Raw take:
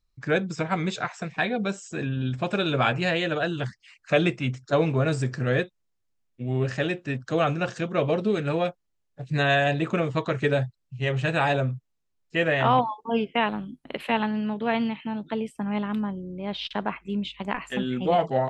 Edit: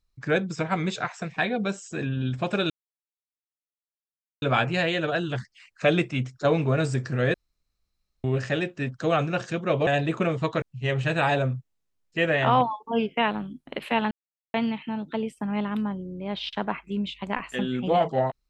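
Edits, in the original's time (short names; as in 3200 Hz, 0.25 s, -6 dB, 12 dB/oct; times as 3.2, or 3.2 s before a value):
2.7 insert silence 1.72 s
5.62–6.52 room tone
8.15–9.6 cut
10.35–10.8 cut
14.29–14.72 mute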